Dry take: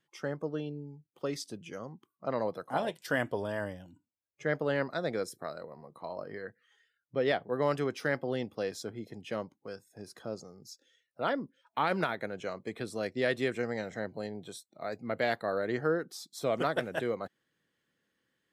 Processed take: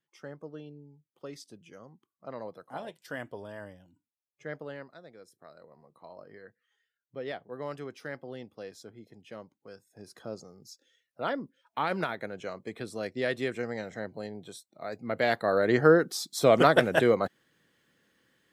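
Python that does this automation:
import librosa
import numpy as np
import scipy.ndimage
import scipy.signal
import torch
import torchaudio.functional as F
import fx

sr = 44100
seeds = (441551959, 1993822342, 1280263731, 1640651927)

y = fx.gain(x, sr, db=fx.line((4.58, -8.0), (5.13, -19.5), (5.71, -8.5), (9.41, -8.5), (10.2, -0.5), (14.87, -0.5), (15.87, 10.0)))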